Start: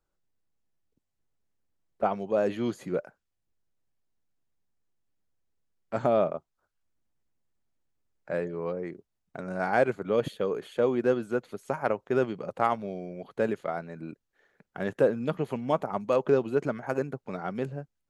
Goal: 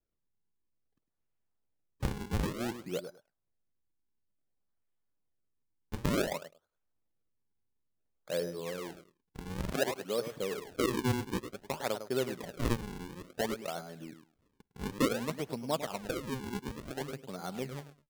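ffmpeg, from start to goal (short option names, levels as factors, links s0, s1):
-filter_complex "[0:a]asettb=1/sr,asplit=3[s0][s1][s2];[s0]atrim=end=6.294[s3];[s1]atrim=start=6.29:end=8.47,asetpts=PTS-STARTPTS,afade=t=in:d=0.004:c=qsin,afade=t=out:st=2.176:d=0.004:c=qsin,equalizer=f=490:t=o:w=0.42:g=5.5[s4];[s2]atrim=start=8.466[s5];[s3][s4]acrossfade=d=0.004:c1=hsin:c2=qsin[s6];[s6][s5]acrossfade=d=0.004:c1=qsin:c2=hsin,aecho=1:1:103|206:0.316|0.0506,asettb=1/sr,asplit=3[s7][s8][s9];[s7]atrim=end=15.934[s10];[s8]atrim=start=15.93:end=17.01,asetpts=PTS-STARTPTS,afade=t=in:d=0.004:c=qsin,afade=t=out:st=1.076:d=0.004:c=qsin,acompressor=threshold=0.0447:ratio=6[s11];[s9]atrim=start=17.006[s12];[s10][s11]acrossfade=d=0.004:c1=hsin:c2=qsin[s13];[s13][s12]acrossfade=d=0.004:c1=qsin:c2=hsin,acrusher=samples=40:mix=1:aa=0.000001:lfo=1:lforange=64:lforate=0.56,asettb=1/sr,asplit=3[s14][s15][s16];[s14]atrim=end=9.714[s17];[s15]atrim=start=9.71:end=10.32,asetpts=PTS-STARTPTS,afade=t=in:d=0.004:c=qsin,afade=t=out:st=0.606:d=0.004:c=qsin,highpass=f=240:p=1[s18];[s16]atrim=start=10.316[s19];[s17][s18]acrossfade=d=0.004:c1=hsin:c2=qsin[s20];[s20][s19]acrossfade=d=0.004:c1=qsin:c2=hsin,volume=0.473"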